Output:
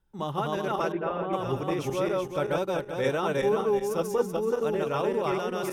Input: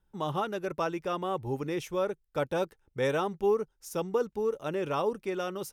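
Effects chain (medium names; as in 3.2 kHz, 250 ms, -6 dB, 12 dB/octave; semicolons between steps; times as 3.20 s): backward echo that repeats 190 ms, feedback 53%, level 0 dB; 0.92–1.33 s: distance through air 490 m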